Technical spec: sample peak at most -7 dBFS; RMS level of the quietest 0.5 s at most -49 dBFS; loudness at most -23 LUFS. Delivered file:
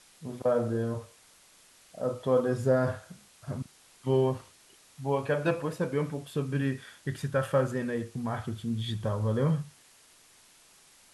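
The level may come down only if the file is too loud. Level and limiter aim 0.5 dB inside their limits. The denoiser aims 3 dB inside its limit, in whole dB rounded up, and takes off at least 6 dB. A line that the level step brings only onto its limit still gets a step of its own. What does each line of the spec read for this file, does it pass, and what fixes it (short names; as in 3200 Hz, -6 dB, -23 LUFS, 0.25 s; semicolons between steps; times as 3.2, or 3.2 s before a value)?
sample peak -13.5 dBFS: OK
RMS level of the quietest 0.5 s -59 dBFS: OK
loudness -30.5 LUFS: OK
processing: none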